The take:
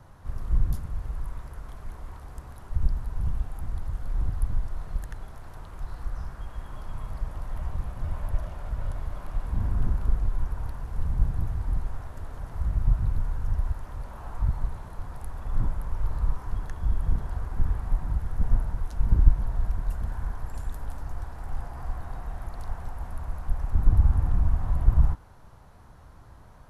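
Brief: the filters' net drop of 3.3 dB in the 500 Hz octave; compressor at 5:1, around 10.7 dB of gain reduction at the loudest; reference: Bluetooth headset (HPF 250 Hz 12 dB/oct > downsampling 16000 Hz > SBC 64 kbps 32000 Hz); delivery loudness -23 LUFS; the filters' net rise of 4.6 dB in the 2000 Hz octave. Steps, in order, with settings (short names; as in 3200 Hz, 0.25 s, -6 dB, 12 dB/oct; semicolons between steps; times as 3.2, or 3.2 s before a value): bell 500 Hz -4.5 dB; bell 2000 Hz +6.5 dB; compressor 5:1, threshold -21 dBFS; HPF 250 Hz 12 dB/oct; downsampling 16000 Hz; gain +24.5 dB; SBC 64 kbps 32000 Hz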